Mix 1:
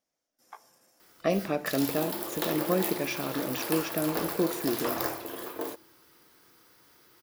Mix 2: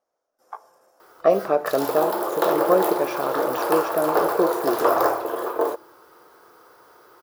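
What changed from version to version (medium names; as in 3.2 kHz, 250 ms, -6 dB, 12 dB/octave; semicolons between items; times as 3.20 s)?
speech -4.0 dB; master: add high-order bell 740 Hz +15 dB 2.3 oct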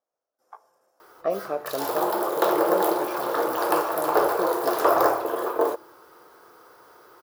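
speech -8.5 dB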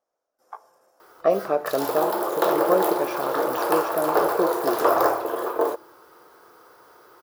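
speech +6.0 dB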